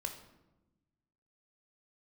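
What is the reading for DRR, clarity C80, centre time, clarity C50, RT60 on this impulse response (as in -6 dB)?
3.5 dB, 11.5 dB, 17 ms, 9.0 dB, 1.0 s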